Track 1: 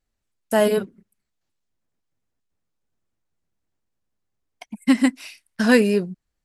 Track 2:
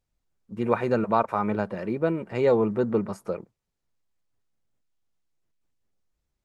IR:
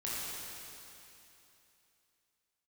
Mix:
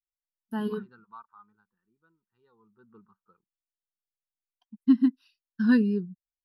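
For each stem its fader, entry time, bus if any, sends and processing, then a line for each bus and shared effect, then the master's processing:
-2.5 dB, 0.00 s, no send, none
0.94 s -10 dB -> 1.64 s -18 dB -> 2.52 s -18 dB -> 2.97 s -8 dB, 0.00 s, no send, local Wiener filter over 9 samples; tilt shelf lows -9.5 dB, about 780 Hz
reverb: none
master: bass shelf 120 Hz +3 dB; static phaser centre 2.2 kHz, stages 6; spectral contrast expander 1.5:1

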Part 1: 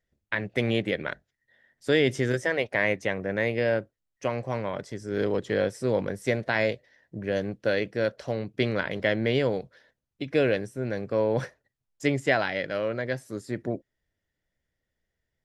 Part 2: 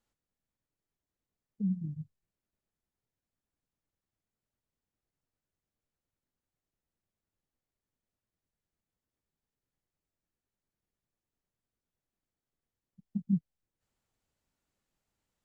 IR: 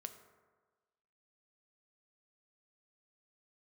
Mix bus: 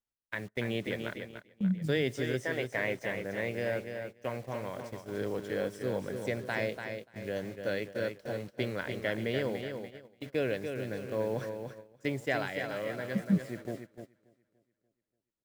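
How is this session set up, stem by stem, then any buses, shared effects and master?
-9.0 dB, 0.00 s, send -15.5 dB, echo send -6 dB, bit crusher 8-bit
+2.0 dB, 0.00 s, no send, no echo send, none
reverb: on, RT60 1.4 s, pre-delay 4 ms
echo: feedback delay 291 ms, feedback 48%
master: gate -42 dBFS, range -15 dB

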